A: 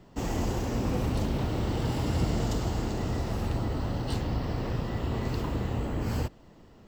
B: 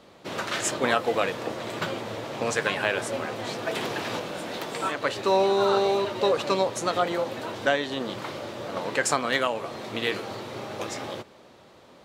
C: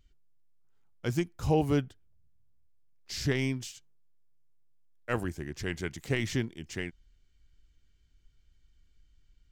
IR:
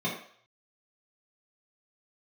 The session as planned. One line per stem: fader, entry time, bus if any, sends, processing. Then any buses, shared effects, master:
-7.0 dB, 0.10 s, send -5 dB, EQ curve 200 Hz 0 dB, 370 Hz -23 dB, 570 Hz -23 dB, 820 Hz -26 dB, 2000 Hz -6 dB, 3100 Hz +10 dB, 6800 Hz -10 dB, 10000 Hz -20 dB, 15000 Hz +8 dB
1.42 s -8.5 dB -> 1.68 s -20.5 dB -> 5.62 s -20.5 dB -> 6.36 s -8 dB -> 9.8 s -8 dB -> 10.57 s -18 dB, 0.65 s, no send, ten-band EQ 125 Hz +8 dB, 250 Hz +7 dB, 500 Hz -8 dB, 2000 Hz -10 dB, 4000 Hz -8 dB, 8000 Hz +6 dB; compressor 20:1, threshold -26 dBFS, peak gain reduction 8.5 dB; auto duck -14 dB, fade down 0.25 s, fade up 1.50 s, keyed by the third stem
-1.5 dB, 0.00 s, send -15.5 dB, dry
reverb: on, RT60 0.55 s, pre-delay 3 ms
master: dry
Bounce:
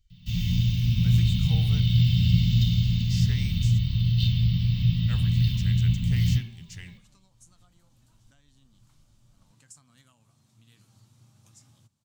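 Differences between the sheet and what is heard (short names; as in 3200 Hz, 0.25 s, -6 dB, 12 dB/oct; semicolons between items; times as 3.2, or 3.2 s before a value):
stem A -7.0 dB -> +3.5 dB; master: extra EQ curve 110 Hz 0 dB, 380 Hz -21 dB, 4300 Hz +1 dB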